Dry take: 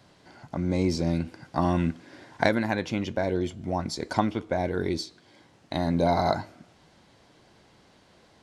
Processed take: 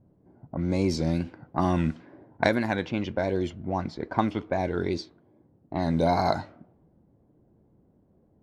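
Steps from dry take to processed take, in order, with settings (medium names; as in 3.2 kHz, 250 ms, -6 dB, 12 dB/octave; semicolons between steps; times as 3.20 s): wow and flutter 69 cents; level-controlled noise filter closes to 330 Hz, open at -21 dBFS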